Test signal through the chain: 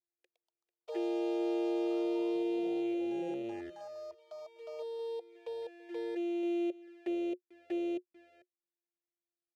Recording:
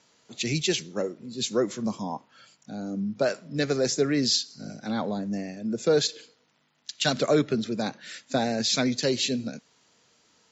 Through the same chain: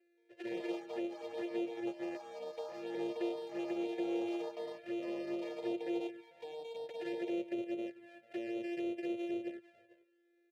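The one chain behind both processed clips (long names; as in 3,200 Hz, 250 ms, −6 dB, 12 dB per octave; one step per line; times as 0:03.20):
samples sorted by size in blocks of 128 samples
high-pass filter 47 Hz 24 dB per octave
brickwall limiter −18.5 dBFS
formant filter e
parametric band 360 Hz +13.5 dB 0.23 octaves
on a send: single-tap delay 444 ms −17.5 dB
on the sum: flanger swept by the level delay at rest 2.5 ms, full sweep at −34.5 dBFS
delay with pitch and tempo change per echo 174 ms, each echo +5 semitones, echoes 3, each echo −6 dB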